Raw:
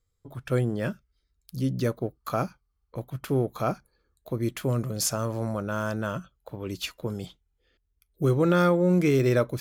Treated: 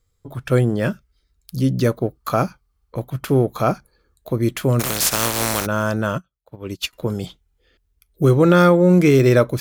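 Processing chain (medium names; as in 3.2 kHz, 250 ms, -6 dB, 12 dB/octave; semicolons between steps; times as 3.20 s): 4.79–5.65 s: spectral contrast reduction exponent 0.32; 6.18–6.93 s: upward expansion 2.5:1, over -45 dBFS; trim +8.5 dB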